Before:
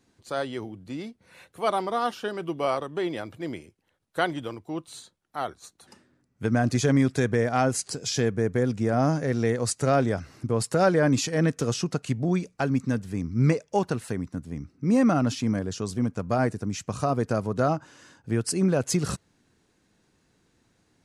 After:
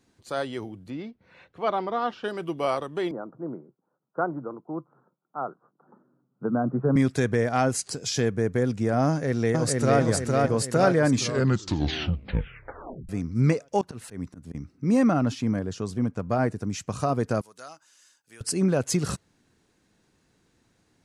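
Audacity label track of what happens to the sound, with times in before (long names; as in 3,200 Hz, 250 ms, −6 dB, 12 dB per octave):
0.900000	2.240000	high-frequency loss of the air 200 metres
3.110000	6.960000	Chebyshev band-pass filter 130–1,400 Hz, order 5
9.080000	10.000000	delay throw 460 ms, feedback 55%, level −1.5 dB
11.080000	11.080000	tape stop 2.01 s
13.810000	14.550000	volume swells 132 ms
15.070000	16.600000	high-shelf EQ 3,400 Hz −7 dB
17.410000	18.410000	first difference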